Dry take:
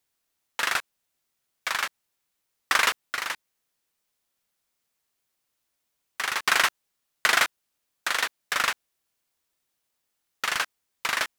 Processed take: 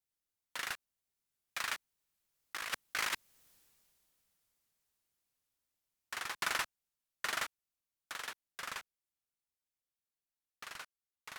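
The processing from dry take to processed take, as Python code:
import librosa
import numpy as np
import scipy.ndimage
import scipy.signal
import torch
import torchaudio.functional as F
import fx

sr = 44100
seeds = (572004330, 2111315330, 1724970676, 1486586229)

y = fx.doppler_pass(x, sr, speed_mps=21, closest_m=4.3, pass_at_s=3.47)
y = fx.low_shelf(y, sr, hz=180.0, db=9.0)
y = fx.over_compress(y, sr, threshold_db=-40.0, ratio=-0.5)
y = fx.high_shelf(y, sr, hz=5700.0, db=4.0)
y = y * 10.0 ** (6.0 / 20.0)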